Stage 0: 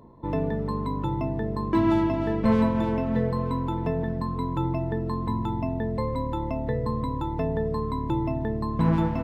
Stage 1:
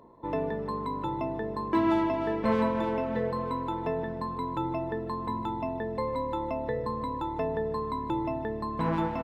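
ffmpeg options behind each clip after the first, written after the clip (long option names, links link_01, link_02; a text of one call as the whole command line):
ffmpeg -i in.wav -af "bass=frequency=250:gain=-12,treble=frequency=4000:gain=-4,aecho=1:1:151|302|453|604|755:0.119|0.0677|0.0386|0.022|0.0125" out.wav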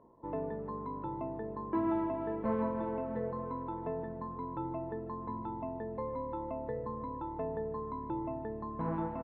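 ffmpeg -i in.wav -af "lowpass=1300,volume=-6.5dB" out.wav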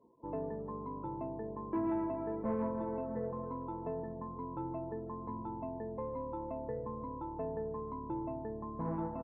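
ffmpeg -i in.wav -af "afftdn=noise_reduction=18:noise_floor=-56,equalizer=frequency=1600:width_type=o:width=1.1:gain=-5,asoftclip=type=tanh:threshold=-22.5dB,volume=-1dB" out.wav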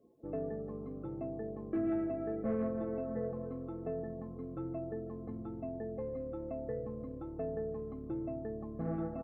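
ffmpeg -i in.wav -af "asuperstop=centerf=960:order=20:qfactor=4.6,volume=1dB" out.wav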